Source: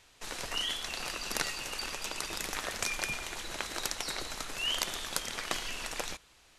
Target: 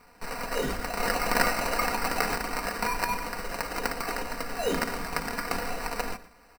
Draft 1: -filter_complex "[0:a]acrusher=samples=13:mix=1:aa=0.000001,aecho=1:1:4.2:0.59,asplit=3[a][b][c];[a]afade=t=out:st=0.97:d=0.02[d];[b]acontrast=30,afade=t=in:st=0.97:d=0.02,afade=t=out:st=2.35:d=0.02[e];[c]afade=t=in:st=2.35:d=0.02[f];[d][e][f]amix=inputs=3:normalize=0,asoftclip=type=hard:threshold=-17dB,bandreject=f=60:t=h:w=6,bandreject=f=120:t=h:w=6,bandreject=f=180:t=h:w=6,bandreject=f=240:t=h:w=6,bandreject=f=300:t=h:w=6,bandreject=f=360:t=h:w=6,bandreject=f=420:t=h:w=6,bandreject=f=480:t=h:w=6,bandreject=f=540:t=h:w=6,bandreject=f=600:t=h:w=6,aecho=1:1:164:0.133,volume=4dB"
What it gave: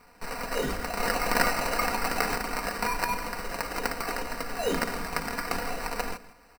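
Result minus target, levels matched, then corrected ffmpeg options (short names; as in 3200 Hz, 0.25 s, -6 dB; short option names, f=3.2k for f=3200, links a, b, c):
echo 46 ms late
-filter_complex "[0:a]acrusher=samples=13:mix=1:aa=0.000001,aecho=1:1:4.2:0.59,asplit=3[a][b][c];[a]afade=t=out:st=0.97:d=0.02[d];[b]acontrast=30,afade=t=in:st=0.97:d=0.02,afade=t=out:st=2.35:d=0.02[e];[c]afade=t=in:st=2.35:d=0.02[f];[d][e][f]amix=inputs=3:normalize=0,asoftclip=type=hard:threshold=-17dB,bandreject=f=60:t=h:w=6,bandreject=f=120:t=h:w=6,bandreject=f=180:t=h:w=6,bandreject=f=240:t=h:w=6,bandreject=f=300:t=h:w=6,bandreject=f=360:t=h:w=6,bandreject=f=420:t=h:w=6,bandreject=f=480:t=h:w=6,bandreject=f=540:t=h:w=6,bandreject=f=600:t=h:w=6,aecho=1:1:118:0.133,volume=4dB"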